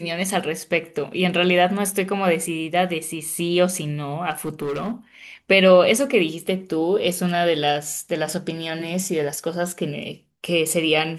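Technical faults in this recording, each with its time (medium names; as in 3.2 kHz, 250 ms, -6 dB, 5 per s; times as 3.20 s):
4.30–4.92 s: clipped -22.5 dBFS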